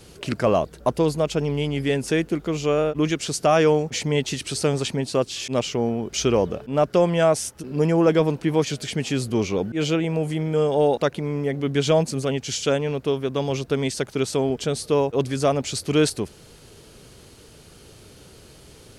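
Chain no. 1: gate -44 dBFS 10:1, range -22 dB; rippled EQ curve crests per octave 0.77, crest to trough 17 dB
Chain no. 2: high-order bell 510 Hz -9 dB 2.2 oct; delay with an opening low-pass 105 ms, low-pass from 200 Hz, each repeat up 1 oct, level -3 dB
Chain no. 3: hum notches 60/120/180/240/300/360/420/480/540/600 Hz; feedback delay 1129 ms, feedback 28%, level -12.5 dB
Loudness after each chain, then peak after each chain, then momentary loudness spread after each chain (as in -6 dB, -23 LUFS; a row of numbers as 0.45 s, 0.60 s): -18.5 LUFS, -26.0 LUFS, -23.0 LUFS; -3.5 dBFS, -11.0 dBFS, -7.5 dBFS; 7 LU, 5 LU, 8 LU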